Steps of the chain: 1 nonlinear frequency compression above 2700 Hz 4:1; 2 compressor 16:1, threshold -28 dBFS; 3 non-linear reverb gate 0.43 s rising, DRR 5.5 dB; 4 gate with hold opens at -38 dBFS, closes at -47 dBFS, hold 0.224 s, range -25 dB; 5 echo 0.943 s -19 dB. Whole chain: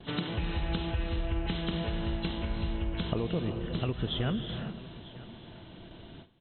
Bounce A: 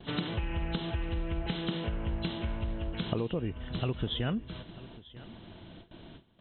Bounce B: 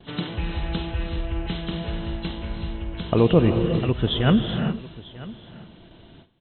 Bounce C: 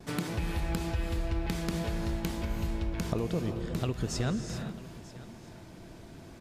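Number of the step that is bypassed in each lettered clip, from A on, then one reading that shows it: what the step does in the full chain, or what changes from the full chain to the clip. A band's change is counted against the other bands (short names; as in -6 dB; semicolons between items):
3, loudness change -1.0 LU; 2, mean gain reduction 4.0 dB; 1, 4 kHz band -5.5 dB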